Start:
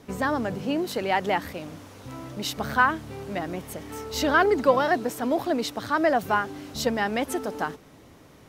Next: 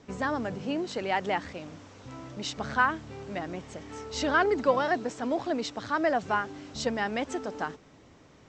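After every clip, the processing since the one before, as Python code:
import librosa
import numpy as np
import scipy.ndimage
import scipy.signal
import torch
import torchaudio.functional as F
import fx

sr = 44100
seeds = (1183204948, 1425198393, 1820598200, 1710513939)

y = scipy.signal.sosfilt(scipy.signal.cheby1(6, 1.0, 7700.0, 'lowpass', fs=sr, output='sos'), x)
y = F.gain(torch.from_numpy(y), -3.5).numpy()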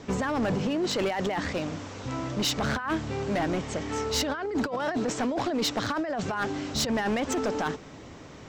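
y = fx.over_compress(x, sr, threshold_db=-33.0, ratio=-1.0)
y = np.clip(y, -10.0 ** (-29.0 / 20.0), 10.0 ** (-29.0 / 20.0))
y = F.gain(torch.from_numpy(y), 6.5).numpy()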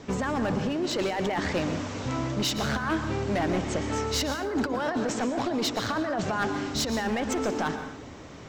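y = fx.rider(x, sr, range_db=4, speed_s=0.5)
y = fx.rev_plate(y, sr, seeds[0], rt60_s=0.81, hf_ratio=0.65, predelay_ms=105, drr_db=8.0)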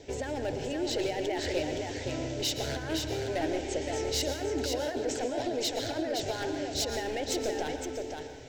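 y = fx.fixed_phaser(x, sr, hz=480.0, stages=4)
y = y + 10.0 ** (-5.0 / 20.0) * np.pad(y, (int(517 * sr / 1000.0), 0))[:len(y)]
y = F.gain(torch.from_numpy(y), -1.5).numpy()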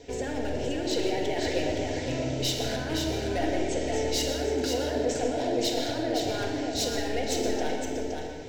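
y = fx.room_shoebox(x, sr, seeds[1], volume_m3=1400.0, walls='mixed', distance_m=1.8)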